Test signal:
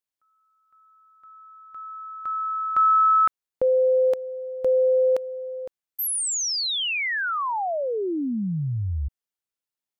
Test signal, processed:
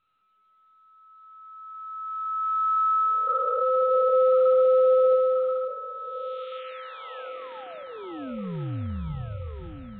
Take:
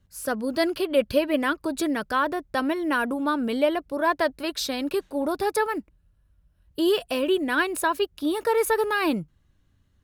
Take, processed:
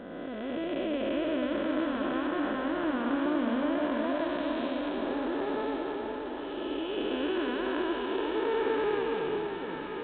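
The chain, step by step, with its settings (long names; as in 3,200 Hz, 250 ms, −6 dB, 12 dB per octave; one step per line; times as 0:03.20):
spectrum smeared in time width 764 ms
delay that swaps between a low-pass and a high-pass 516 ms, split 920 Hz, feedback 76%, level −3 dB
mu-law 64 kbit/s 8,000 Hz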